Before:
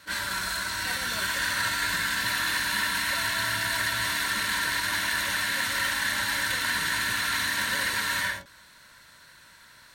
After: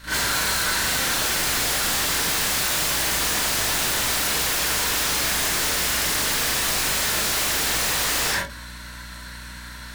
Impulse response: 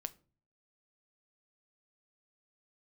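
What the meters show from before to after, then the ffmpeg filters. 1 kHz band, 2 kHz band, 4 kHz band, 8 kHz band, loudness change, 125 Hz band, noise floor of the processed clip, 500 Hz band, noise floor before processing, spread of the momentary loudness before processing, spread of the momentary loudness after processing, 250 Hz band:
+3.5 dB, 0.0 dB, +5.5 dB, +10.5 dB, +5.5 dB, +7.5 dB, -38 dBFS, +10.5 dB, -53 dBFS, 3 LU, 17 LU, +7.0 dB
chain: -filter_complex "[0:a]aeval=exprs='0.0282*(abs(mod(val(0)/0.0282+3,4)-2)-1)':c=same,aeval=exprs='val(0)+0.00224*(sin(2*PI*60*n/s)+sin(2*PI*2*60*n/s)/2+sin(2*PI*3*60*n/s)/3+sin(2*PI*4*60*n/s)/4+sin(2*PI*5*60*n/s)/5)':c=same,asplit=2[a][b];[1:a]atrim=start_sample=2205,adelay=38[c];[b][c]afir=irnorm=-1:irlink=0,volume=9dB[d];[a][d]amix=inputs=2:normalize=0,volume=5.5dB"

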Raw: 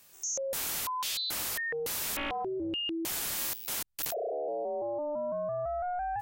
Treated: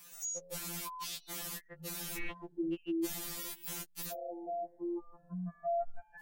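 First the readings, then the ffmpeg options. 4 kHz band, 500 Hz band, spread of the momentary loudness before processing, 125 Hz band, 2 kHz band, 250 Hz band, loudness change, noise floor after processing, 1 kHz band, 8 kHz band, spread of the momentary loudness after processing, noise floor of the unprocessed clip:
-11.5 dB, -7.5 dB, 3 LU, +1.5 dB, -10.5 dB, +0.5 dB, -7.0 dB, -64 dBFS, -8.0 dB, -7.0 dB, 7 LU, -53 dBFS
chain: -filter_complex "[0:a]acrossover=split=310[a][b];[b]acompressor=threshold=-49dB:ratio=2.5[c];[a][c]amix=inputs=2:normalize=0,afftfilt=real='re*2.83*eq(mod(b,8),0)':imag='im*2.83*eq(mod(b,8),0)':win_size=2048:overlap=0.75,volume=5.5dB"

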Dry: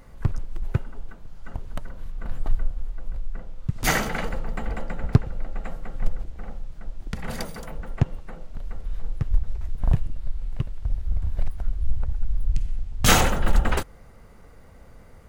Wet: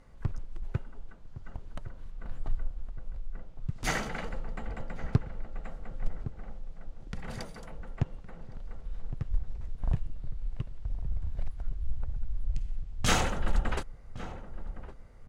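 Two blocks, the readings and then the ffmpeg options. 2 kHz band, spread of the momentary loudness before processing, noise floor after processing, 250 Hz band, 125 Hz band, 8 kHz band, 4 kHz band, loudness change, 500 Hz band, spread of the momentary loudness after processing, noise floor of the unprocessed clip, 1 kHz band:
-8.5 dB, 17 LU, -48 dBFS, -8.5 dB, -8.0 dB, -10.0 dB, -8.5 dB, -9.0 dB, -8.5 dB, 16 LU, -47 dBFS, -8.5 dB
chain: -filter_complex "[0:a]lowpass=8.8k,asplit=2[a][b];[b]adelay=1112,lowpass=f=900:p=1,volume=-12.5dB,asplit=2[c][d];[d]adelay=1112,lowpass=f=900:p=1,volume=0.51,asplit=2[e][f];[f]adelay=1112,lowpass=f=900:p=1,volume=0.51,asplit=2[g][h];[h]adelay=1112,lowpass=f=900:p=1,volume=0.51,asplit=2[i][j];[j]adelay=1112,lowpass=f=900:p=1,volume=0.51[k];[c][e][g][i][k]amix=inputs=5:normalize=0[l];[a][l]amix=inputs=2:normalize=0,volume=-8.5dB"

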